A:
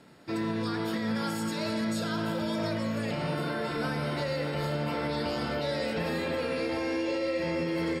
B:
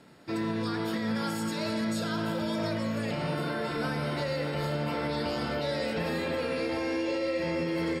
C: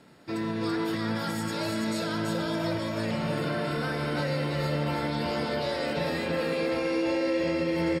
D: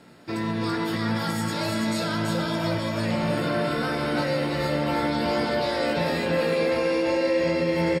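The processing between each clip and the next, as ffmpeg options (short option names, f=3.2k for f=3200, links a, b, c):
-af anull
-af "aecho=1:1:333:0.708"
-filter_complex "[0:a]asplit=2[a][b];[b]adelay=17,volume=-7.5dB[c];[a][c]amix=inputs=2:normalize=0,volume=3.5dB"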